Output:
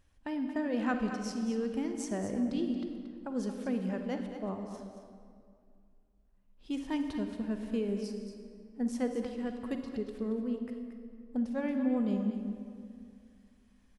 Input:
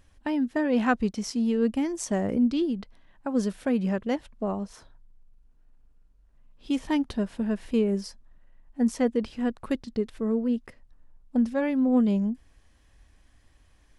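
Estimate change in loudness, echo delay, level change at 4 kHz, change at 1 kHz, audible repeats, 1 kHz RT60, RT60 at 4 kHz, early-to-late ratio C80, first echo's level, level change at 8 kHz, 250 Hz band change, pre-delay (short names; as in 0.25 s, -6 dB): -7.5 dB, 0.228 s, -7.5 dB, -7.5 dB, 1, 2.2 s, 1.5 s, 5.5 dB, -10.0 dB, -8.0 dB, -7.0 dB, 38 ms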